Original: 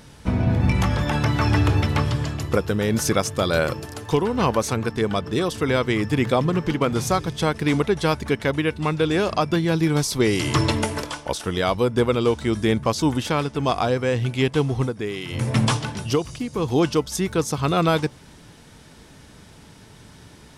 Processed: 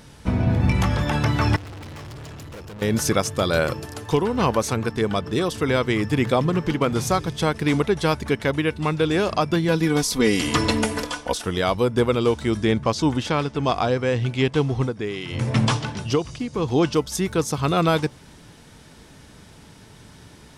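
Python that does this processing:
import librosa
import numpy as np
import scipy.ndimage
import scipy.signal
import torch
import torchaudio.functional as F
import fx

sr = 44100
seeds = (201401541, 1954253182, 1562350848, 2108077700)

y = fx.tube_stage(x, sr, drive_db=36.0, bias=0.6, at=(1.56, 2.82))
y = fx.comb(y, sr, ms=4.1, depth=0.65, at=(9.68, 11.42))
y = fx.lowpass(y, sr, hz=7300.0, slope=12, at=(12.57, 16.94))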